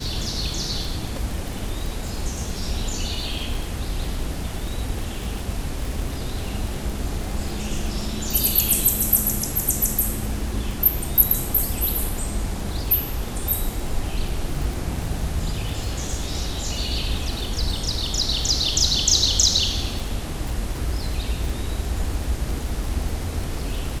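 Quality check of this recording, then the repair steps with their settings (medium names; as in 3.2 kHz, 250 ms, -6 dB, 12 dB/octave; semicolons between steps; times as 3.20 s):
crackle 40 per s -27 dBFS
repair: de-click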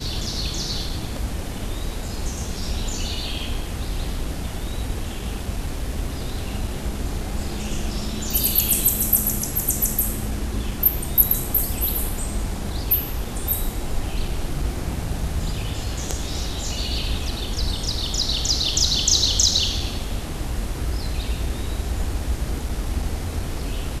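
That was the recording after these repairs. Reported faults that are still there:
nothing left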